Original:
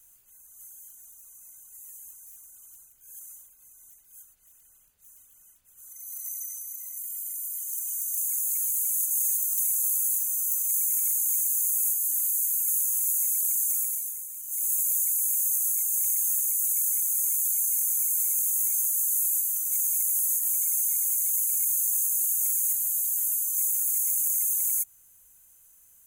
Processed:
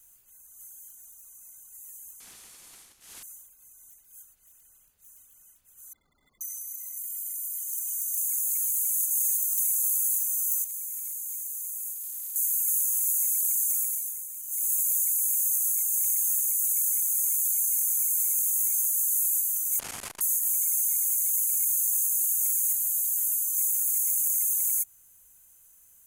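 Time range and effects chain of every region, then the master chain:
0:02.20–0:03.23: variable-slope delta modulation 64 kbit/s + notch filter 600 Hz, Q 9.8
0:05.93–0:06.41: parametric band 250 Hz +8 dB 1.2 octaves + bad sample-rate conversion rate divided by 8×, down filtered, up hold
0:10.64–0:12.36: gain into a clipping stage and back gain 14.5 dB + tuned comb filter 63 Hz, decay 1.8 s, harmonics odd, mix 70%
0:19.79–0:20.21: variable-slope delta modulation 64 kbit/s + parametric band 3,700 Hz −4.5 dB 0.36 octaves + saturating transformer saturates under 1,200 Hz
whole clip: no processing

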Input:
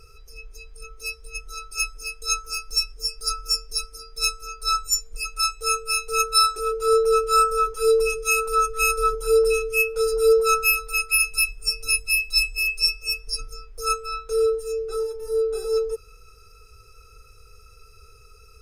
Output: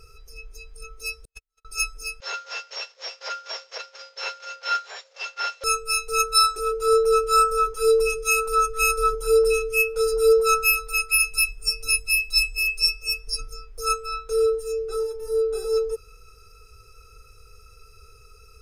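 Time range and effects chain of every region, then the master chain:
0:01.25–0:01.65: variable-slope delta modulation 64 kbit/s + noise gate −29 dBFS, range −51 dB
0:02.20–0:05.64: variable-slope delta modulation 32 kbit/s + linear-phase brick-wall high-pass 310 Hz + frequency shifter +86 Hz
whole clip: no processing

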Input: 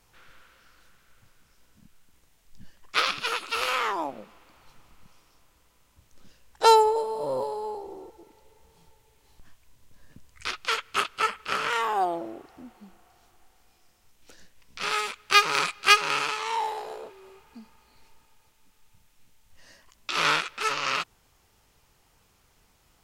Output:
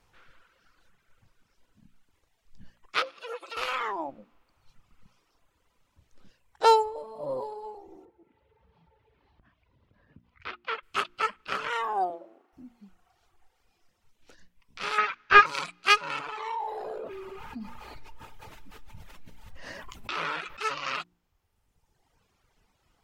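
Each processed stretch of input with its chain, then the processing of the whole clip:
0:03.02–0:03.57: comb filter 5.9 ms, depth 51% + downward compressor 12 to 1, threshold −32 dBFS + high-pass with resonance 500 Hz, resonance Q 4.6
0:08.05–0:10.83: high-pass filter 55 Hz + upward compression, threshold −51 dBFS + high-frequency loss of the air 320 metres
0:12.10–0:12.53: running median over 9 samples + high-pass filter 420 Hz
0:14.98–0:15.46: variable-slope delta modulation 32 kbit/s + parametric band 1,600 Hz +14 dB 1.5 octaves
0:16.19–0:20.57: parametric band 7,100 Hz −6.5 dB 2.2 octaves + flanger 1.4 Hz, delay 6.4 ms, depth 8.6 ms, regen −73% + envelope flattener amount 70%
whole clip: reverb reduction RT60 1.4 s; low-pass filter 3,600 Hz 6 dB per octave; hum removal 58.84 Hz, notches 6; level −1.5 dB

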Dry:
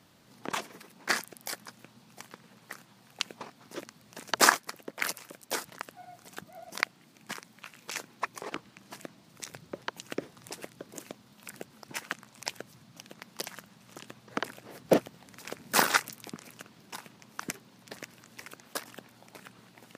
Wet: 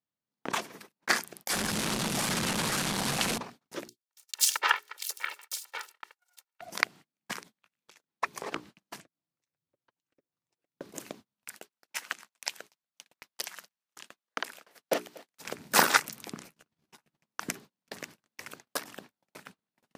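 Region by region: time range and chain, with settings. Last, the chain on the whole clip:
0:01.50–0:03.38: linear delta modulator 64 kbit/s, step −23.5 dBFS + saturating transformer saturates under 1,400 Hz
0:03.88–0:06.61: lower of the sound and its delayed copy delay 2.2 ms + high-pass filter 1,100 Hz + multiband delay without the direct sound highs, lows 220 ms, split 3,400 Hz
0:07.42–0:08.14: parametric band 3,500 Hz +3.5 dB 0.35 octaves + downward compressor 12 to 1, threshold −48 dBFS
0:09.00–0:10.76: low-pass filter 7,900 Hz + notch comb filter 210 Hz + downward compressor 4 to 1, threshold −54 dBFS
0:11.45–0:15.40: high-pass filter 1,200 Hz 6 dB per octave + single-tap delay 239 ms −21 dB
0:16.44–0:17.17: low-shelf EQ 140 Hz +8.5 dB + downward compressor 10 to 1, threshold −49 dBFS + double-tracking delay 13 ms −4.5 dB
whole clip: mains-hum notches 60/120/180/240/300/360/420 Hz; noise gate −50 dBFS, range −37 dB; level +2 dB

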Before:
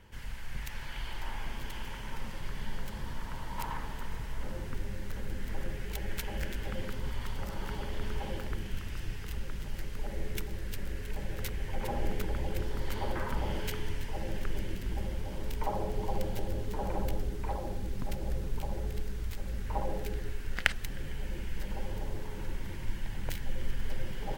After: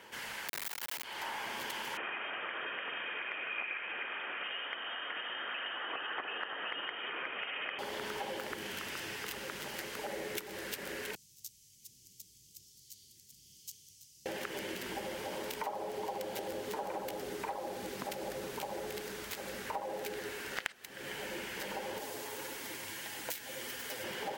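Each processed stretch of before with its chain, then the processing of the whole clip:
0:00.48–0:01.04: sign of each sample alone + high-shelf EQ 11,000 Hz +11 dB
0:01.97–0:07.79: high-pass filter 200 Hz 24 dB per octave + tilt shelving filter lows −7 dB, about 820 Hz + voice inversion scrambler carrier 3,400 Hz
0:11.15–0:14.26: elliptic band-stop filter 130–6,200 Hz, stop band 70 dB + three-way crossover with the lows and the highs turned down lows −17 dB, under 380 Hz, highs −12 dB, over 4,600 Hz
0:21.99–0:24.04: high-shelf EQ 4,300 Hz +11 dB + notch comb filter 190 Hz + flanger 1.7 Hz, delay 2 ms, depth 8.9 ms, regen +60%
whole clip: high-pass filter 410 Hz 12 dB per octave; downward compressor 6 to 1, threshold −45 dBFS; level +9 dB

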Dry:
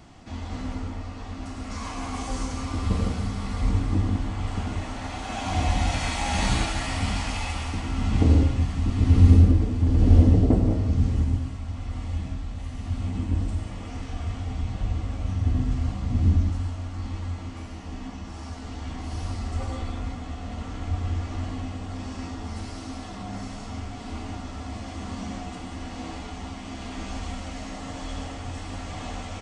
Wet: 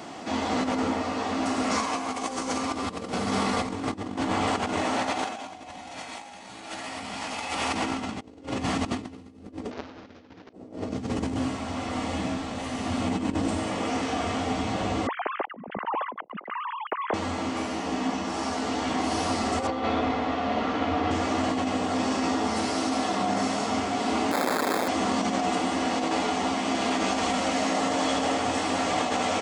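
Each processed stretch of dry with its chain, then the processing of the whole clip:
0:09.71–0:10.53: linear delta modulator 32 kbit/s, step −20 dBFS + high-frequency loss of the air 80 metres
0:15.07–0:17.14: three sine waves on the formant tracks + low-pass filter 1,400 Hz + spectral tilt +3.5 dB per octave
0:19.67–0:21.11: Bessel low-pass filter 3,600 Hz, order 4 + mains-hum notches 60/120/180/240/300/360/420/480 Hz + flutter between parallel walls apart 10.6 metres, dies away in 0.62 s
0:24.31–0:24.88: sign of each sample alone + high-pass filter 170 Hz + sample-rate reduction 2,900 Hz
whole clip: high-pass filter 270 Hz 12 dB per octave; parametric band 510 Hz +4 dB 2.1 octaves; compressor whose output falls as the input rises −36 dBFS, ratio −0.5; level +7.5 dB

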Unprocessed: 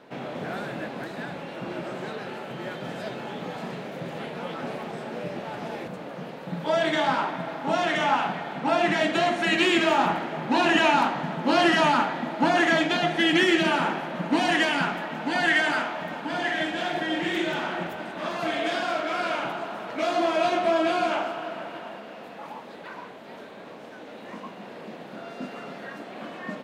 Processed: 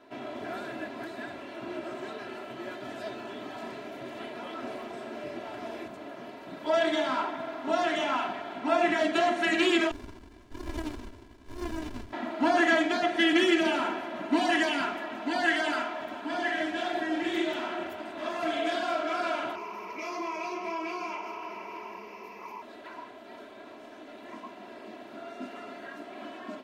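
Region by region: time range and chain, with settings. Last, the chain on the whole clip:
0:09.91–0:12.13: high-pass filter 1,400 Hz 24 dB per octave + high-shelf EQ 5,100 Hz −11 dB + windowed peak hold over 65 samples
0:19.55–0:22.62: EQ curve with evenly spaced ripples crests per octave 0.81, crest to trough 16 dB + downward compressor 2.5 to 1, threshold −32 dBFS
whole clip: comb filter 3 ms, depth 97%; every ending faded ahead of time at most 200 dB per second; level −7 dB

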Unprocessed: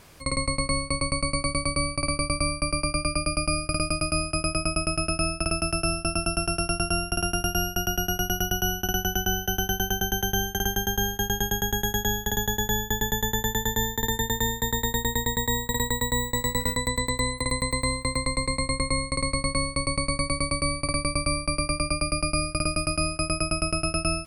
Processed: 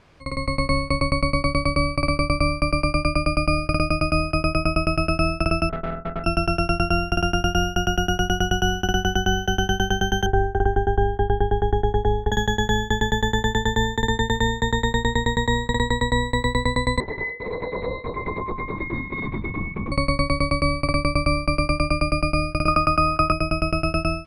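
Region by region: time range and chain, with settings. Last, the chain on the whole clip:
0:05.69–0:06.24: lower of the sound and its delayed copy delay 4.6 ms + linear-phase brick-wall low-pass 1,500 Hz + tube saturation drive 29 dB, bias 0.55
0:10.26–0:12.32: low-pass filter 1,100 Hz + comb filter 2.7 ms, depth 72% + bad sample-rate conversion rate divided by 2×, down none, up zero stuff
0:17.00–0:19.92: stiff-string resonator 70 Hz, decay 0.26 s, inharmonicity 0.002 + linear-prediction vocoder at 8 kHz whisper
0:22.68–0:23.32: parametric band 1,200 Hz +10.5 dB 0.67 octaves + multiband upward and downward compressor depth 100%
whole clip: Bessel low-pass filter 3,000 Hz, order 2; automatic gain control gain up to 8.5 dB; level −2 dB

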